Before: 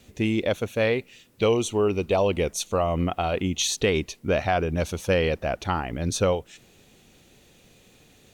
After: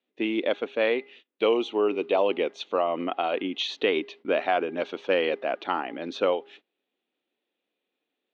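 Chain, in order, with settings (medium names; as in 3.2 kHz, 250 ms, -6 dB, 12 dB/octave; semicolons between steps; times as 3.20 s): elliptic band-pass 280–3500 Hz, stop band 60 dB; de-hum 407.1 Hz, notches 5; gate -49 dBFS, range -24 dB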